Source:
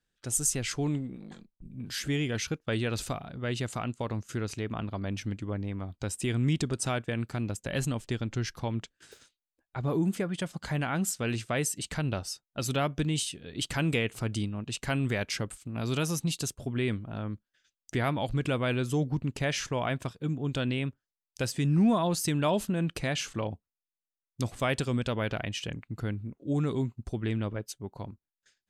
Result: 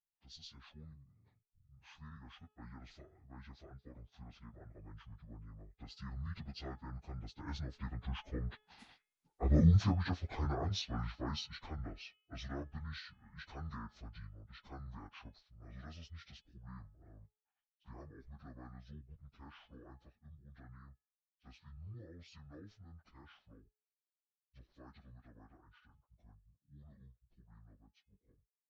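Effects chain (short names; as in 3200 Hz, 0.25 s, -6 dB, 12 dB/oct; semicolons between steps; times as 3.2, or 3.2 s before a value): pitch shift by moving bins -11.5 st; Doppler pass-by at 9.57, 12 m/s, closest 5.2 m; de-hum 425.6 Hz, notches 8; gain +3 dB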